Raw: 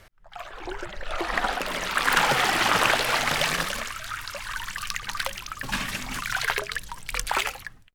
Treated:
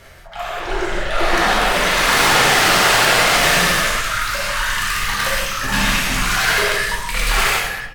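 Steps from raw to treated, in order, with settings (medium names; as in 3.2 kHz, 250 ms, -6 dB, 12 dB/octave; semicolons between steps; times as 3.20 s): in parallel at -3.5 dB: sine folder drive 17 dB, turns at -4 dBFS; on the sum: speakerphone echo 220 ms, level -12 dB; gated-style reverb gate 210 ms flat, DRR -7 dB; trim -12 dB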